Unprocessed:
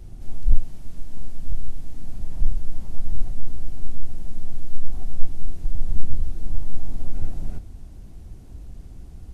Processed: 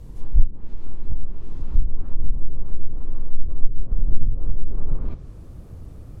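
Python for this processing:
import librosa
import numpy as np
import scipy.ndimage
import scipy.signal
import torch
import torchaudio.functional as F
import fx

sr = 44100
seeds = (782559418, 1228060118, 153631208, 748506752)

y = fx.speed_glide(x, sr, from_pct=133, to_pct=168)
y = fx.env_lowpass_down(y, sr, base_hz=320.0, full_db=-7.0)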